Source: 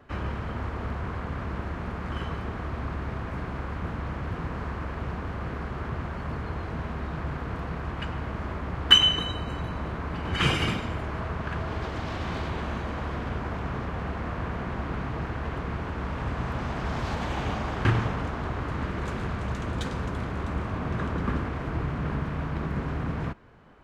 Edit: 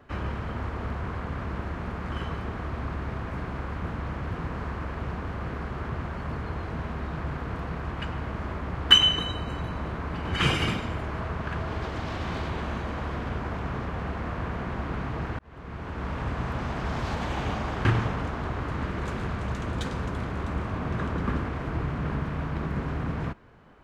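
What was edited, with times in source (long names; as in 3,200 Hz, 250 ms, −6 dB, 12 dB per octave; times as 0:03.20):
0:15.39–0:16.09: fade in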